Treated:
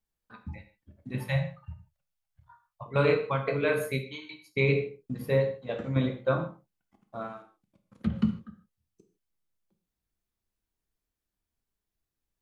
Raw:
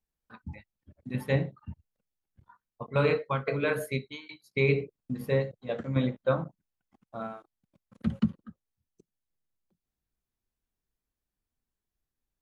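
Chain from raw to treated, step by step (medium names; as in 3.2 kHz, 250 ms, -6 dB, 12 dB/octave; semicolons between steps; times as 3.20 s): 1.26–2.86 s: elliptic band-stop 160–610 Hz; gated-style reverb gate 180 ms falling, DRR 5.5 dB; 7.20–8.19 s: low-pass that closes with the level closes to 1.4 kHz, closed at -20 dBFS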